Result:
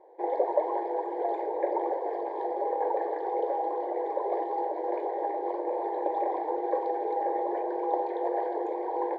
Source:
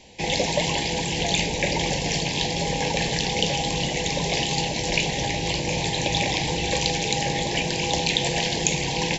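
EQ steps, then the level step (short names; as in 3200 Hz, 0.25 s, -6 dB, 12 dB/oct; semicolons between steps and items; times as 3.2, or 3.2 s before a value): brick-wall FIR high-pass 320 Hz; inverse Chebyshev low-pass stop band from 2500 Hz, stop band 40 dB; 0.0 dB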